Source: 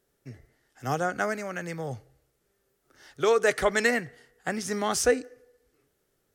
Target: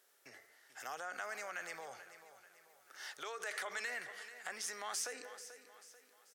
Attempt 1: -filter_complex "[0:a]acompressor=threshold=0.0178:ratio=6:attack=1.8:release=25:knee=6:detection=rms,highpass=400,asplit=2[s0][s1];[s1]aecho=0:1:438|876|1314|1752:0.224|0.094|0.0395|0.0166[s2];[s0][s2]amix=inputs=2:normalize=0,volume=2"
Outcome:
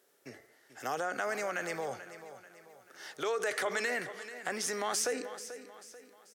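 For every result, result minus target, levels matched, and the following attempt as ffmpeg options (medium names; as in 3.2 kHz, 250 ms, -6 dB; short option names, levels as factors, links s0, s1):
compression: peak gain reduction -6.5 dB; 500 Hz band +5.5 dB
-filter_complex "[0:a]acompressor=threshold=0.00708:ratio=6:attack=1.8:release=25:knee=6:detection=rms,highpass=400,asplit=2[s0][s1];[s1]aecho=0:1:438|876|1314|1752:0.224|0.094|0.0395|0.0166[s2];[s0][s2]amix=inputs=2:normalize=0,volume=2"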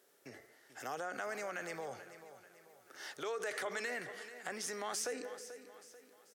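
500 Hz band +6.0 dB
-filter_complex "[0:a]acompressor=threshold=0.00708:ratio=6:attack=1.8:release=25:knee=6:detection=rms,highpass=840,asplit=2[s0][s1];[s1]aecho=0:1:438|876|1314|1752:0.224|0.094|0.0395|0.0166[s2];[s0][s2]amix=inputs=2:normalize=0,volume=2"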